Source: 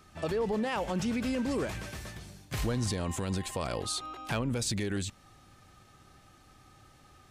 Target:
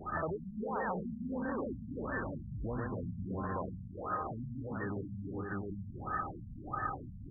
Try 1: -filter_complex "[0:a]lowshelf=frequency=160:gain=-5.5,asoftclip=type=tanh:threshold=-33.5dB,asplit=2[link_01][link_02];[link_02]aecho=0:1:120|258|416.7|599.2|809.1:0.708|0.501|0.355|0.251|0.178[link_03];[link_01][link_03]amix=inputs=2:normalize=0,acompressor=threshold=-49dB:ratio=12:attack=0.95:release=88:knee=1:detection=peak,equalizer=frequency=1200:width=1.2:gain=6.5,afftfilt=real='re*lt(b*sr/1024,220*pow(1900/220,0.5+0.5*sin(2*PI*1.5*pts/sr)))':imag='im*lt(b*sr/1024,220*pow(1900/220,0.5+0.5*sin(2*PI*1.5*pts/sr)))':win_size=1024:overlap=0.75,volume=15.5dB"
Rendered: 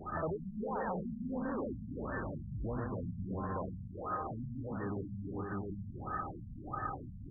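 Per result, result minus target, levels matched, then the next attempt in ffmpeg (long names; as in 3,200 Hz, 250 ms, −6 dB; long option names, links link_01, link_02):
soft clipping: distortion +10 dB; 2,000 Hz band −4.0 dB
-filter_complex "[0:a]lowshelf=frequency=160:gain=-5.5,asoftclip=type=tanh:threshold=-25dB,asplit=2[link_01][link_02];[link_02]aecho=0:1:120|258|416.7|599.2|809.1:0.708|0.501|0.355|0.251|0.178[link_03];[link_01][link_03]amix=inputs=2:normalize=0,acompressor=threshold=-49dB:ratio=12:attack=0.95:release=88:knee=1:detection=peak,equalizer=frequency=1200:width=1.2:gain=6.5,afftfilt=real='re*lt(b*sr/1024,220*pow(1900/220,0.5+0.5*sin(2*PI*1.5*pts/sr)))':imag='im*lt(b*sr/1024,220*pow(1900/220,0.5+0.5*sin(2*PI*1.5*pts/sr)))':win_size=1024:overlap=0.75,volume=15.5dB"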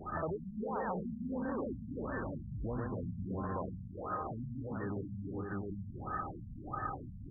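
2,000 Hz band −4.0 dB
-filter_complex "[0:a]lowshelf=frequency=160:gain=-5.5,asoftclip=type=tanh:threshold=-25dB,asplit=2[link_01][link_02];[link_02]aecho=0:1:120|258|416.7|599.2|809.1:0.708|0.501|0.355|0.251|0.178[link_03];[link_01][link_03]amix=inputs=2:normalize=0,acompressor=threshold=-49dB:ratio=12:attack=0.95:release=88:knee=1:detection=peak,lowpass=frequency=2500:width_type=q:width=6.2,equalizer=frequency=1200:width=1.2:gain=6.5,afftfilt=real='re*lt(b*sr/1024,220*pow(1900/220,0.5+0.5*sin(2*PI*1.5*pts/sr)))':imag='im*lt(b*sr/1024,220*pow(1900/220,0.5+0.5*sin(2*PI*1.5*pts/sr)))':win_size=1024:overlap=0.75,volume=15.5dB"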